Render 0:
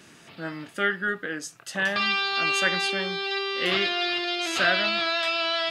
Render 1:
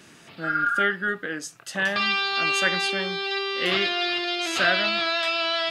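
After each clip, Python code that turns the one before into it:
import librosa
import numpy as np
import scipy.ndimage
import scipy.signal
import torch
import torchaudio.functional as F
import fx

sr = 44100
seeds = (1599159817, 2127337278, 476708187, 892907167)

y = fx.spec_repair(x, sr, seeds[0], start_s=0.47, length_s=0.34, low_hz=830.0, high_hz=1700.0, source='after')
y = y * librosa.db_to_amplitude(1.0)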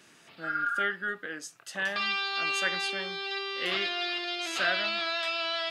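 y = fx.low_shelf(x, sr, hz=270.0, db=-8.5)
y = y * librosa.db_to_amplitude(-6.0)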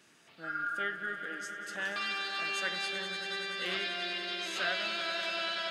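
y = fx.echo_swell(x, sr, ms=96, loudest=5, wet_db=-13.0)
y = y * librosa.db_to_amplitude(-5.5)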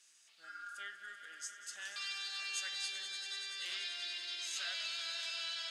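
y = fx.bandpass_q(x, sr, hz=7200.0, q=1.4)
y = y * librosa.db_to_amplitude(4.5)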